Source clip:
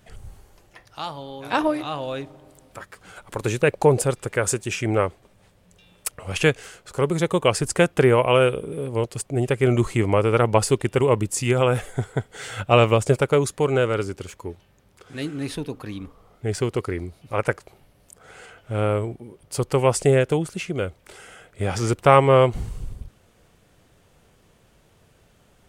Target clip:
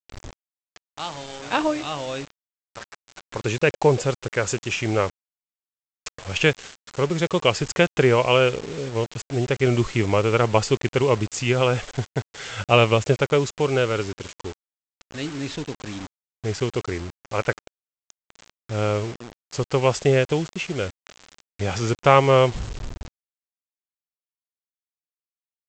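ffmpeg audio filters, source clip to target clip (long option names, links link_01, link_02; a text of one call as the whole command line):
ffmpeg -i in.wav -af "adynamicequalizer=threshold=0.00891:dfrequency=2900:dqfactor=1.5:tfrequency=2900:tqfactor=1.5:attack=5:release=100:ratio=0.375:range=2.5:mode=boostabove:tftype=bell,aresample=16000,acrusher=bits=5:mix=0:aa=0.000001,aresample=44100,volume=-1dB" out.wav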